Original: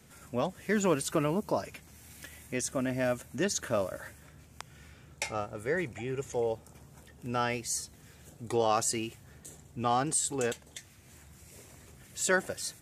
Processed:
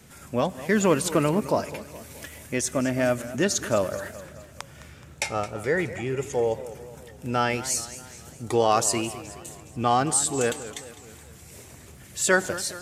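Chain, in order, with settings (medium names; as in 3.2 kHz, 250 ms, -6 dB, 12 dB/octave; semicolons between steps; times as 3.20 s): on a send at -21.5 dB: reverberation RT60 0.70 s, pre-delay 77 ms; on the sum: modulated delay 211 ms, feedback 54%, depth 165 cents, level -15 dB; trim +6.5 dB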